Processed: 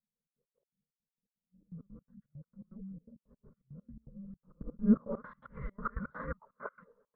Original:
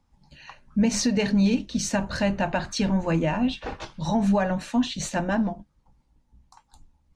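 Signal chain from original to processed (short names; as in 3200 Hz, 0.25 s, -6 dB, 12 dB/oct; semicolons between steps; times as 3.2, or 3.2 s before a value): whole clip reversed; limiter -20 dBFS, peak gain reduction 7.5 dB; low-pass sweep 170 Hz -> 1500 Hz, 4.33–5.24; mistuned SSB -390 Hz 420–2700 Hz; fixed phaser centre 500 Hz, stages 8; step gate "xxx.x.x.xx.x.x." 166 bpm -24 dB; gain +2.5 dB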